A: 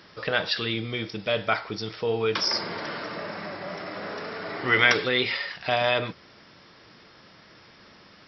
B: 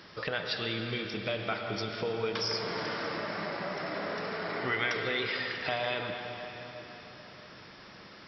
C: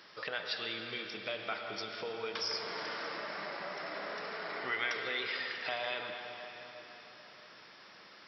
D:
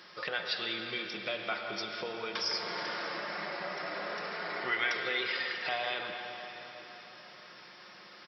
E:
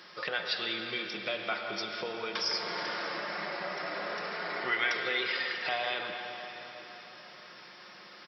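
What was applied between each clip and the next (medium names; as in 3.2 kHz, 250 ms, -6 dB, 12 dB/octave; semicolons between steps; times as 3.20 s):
compression 2.5:1, threshold -34 dBFS, peak gain reduction 13.5 dB; reverberation RT60 3.9 s, pre-delay 93 ms, DRR 3 dB
high-pass 610 Hz 6 dB/octave; trim -3 dB
comb 5.6 ms, depth 40%; trim +2.5 dB
high-pass 95 Hz; trim +1.5 dB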